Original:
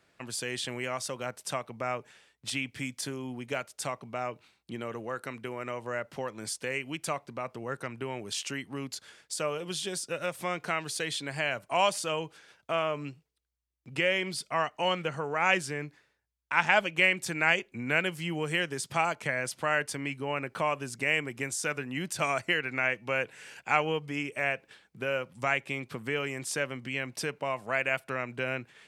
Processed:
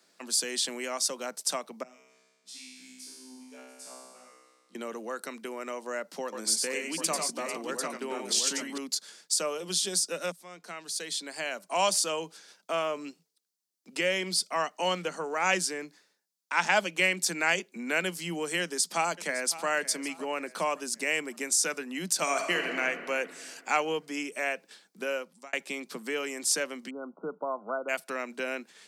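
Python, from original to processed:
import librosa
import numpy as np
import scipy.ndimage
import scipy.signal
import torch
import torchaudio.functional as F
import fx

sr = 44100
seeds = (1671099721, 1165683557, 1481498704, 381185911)

y = fx.comb_fb(x, sr, f0_hz=64.0, decay_s=1.5, harmonics='all', damping=0.0, mix_pct=100, at=(1.83, 4.75))
y = fx.echo_multitap(y, sr, ms=(93, 111, 446, 746), db=(-5.0, -11.5, -12.0, -5.5), at=(6.23, 8.78))
y = fx.echo_throw(y, sr, start_s=18.61, length_s=1.07, ms=560, feedback_pct=40, wet_db=-15.5)
y = fx.reverb_throw(y, sr, start_s=22.22, length_s=0.57, rt60_s=2.4, drr_db=3.0)
y = fx.brickwall_lowpass(y, sr, high_hz=1500.0, at=(26.89, 27.88), fade=0.02)
y = fx.edit(y, sr, fx.fade_in_from(start_s=10.32, length_s=1.59, floor_db=-20.5),
    fx.fade_out_span(start_s=25.1, length_s=0.43), tone=tone)
y = scipy.signal.sosfilt(scipy.signal.butter(16, 170.0, 'highpass', fs=sr, output='sos'), y)
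y = fx.high_shelf_res(y, sr, hz=3600.0, db=8.0, q=1.5)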